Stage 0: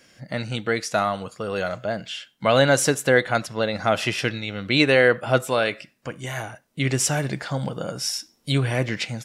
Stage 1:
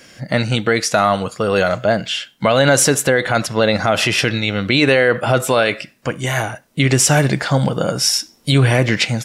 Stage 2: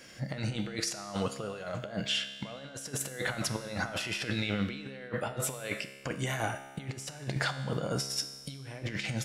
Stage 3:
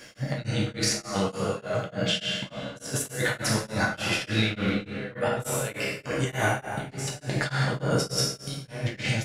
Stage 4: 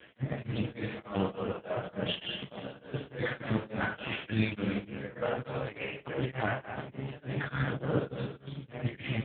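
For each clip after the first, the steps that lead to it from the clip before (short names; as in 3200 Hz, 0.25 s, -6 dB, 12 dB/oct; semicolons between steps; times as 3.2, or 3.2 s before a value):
maximiser +13.5 dB; gain -2.5 dB
negative-ratio compressor -21 dBFS, ratio -0.5; resonator 68 Hz, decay 1.5 s, harmonics all, mix 70%; gain -4.5 dB
plate-style reverb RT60 1.4 s, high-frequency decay 0.65×, DRR -4 dB; beating tremolo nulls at 3.4 Hz; gain +4.5 dB
half-wave gain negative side -7 dB; AMR-NB 4.75 kbps 8000 Hz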